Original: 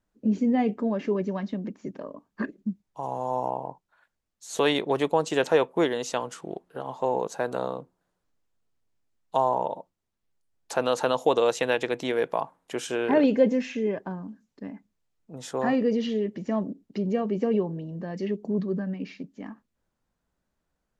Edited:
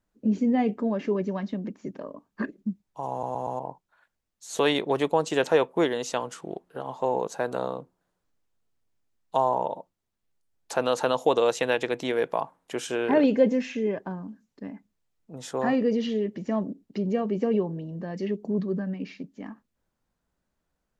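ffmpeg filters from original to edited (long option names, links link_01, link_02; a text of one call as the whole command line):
ffmpeg -i in.wav -filter_complex "[0:a]asplit=5[link_01][link_02][link_03][link_04][link_05];[link_01]atrim=end=3.232[link_06];[link_02]atrim=start=3.108:end=3.232[link_07];[link_03]atrim=start=3.108:end=3.232[link_08];[link_04]atrim=start=3.108:end=3.232[link_09];[link_05]atrim=start=3.588[link_10];[link_06][link_07]acrossfade=duration=0.004:curve1=hsin:curve2=hsin[link_11];[link_11][link_08]acrossfade=duration=0.004:curve1=hsin:curve2=hsin[link_12];[link_12][link_09]acrossfade=duration=0.004:curve1=hsin:curve2=hsin[link_13];[link_13][link_10]acrossfade=duration=0.004:curve1=hsin:curve2=hsin" out.wav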